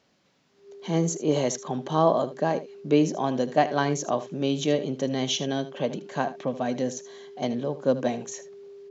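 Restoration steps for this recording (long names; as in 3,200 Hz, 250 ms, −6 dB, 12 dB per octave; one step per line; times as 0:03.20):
notch filter 400 Hz, Q 30
echo removal 77 ms −14.5 dB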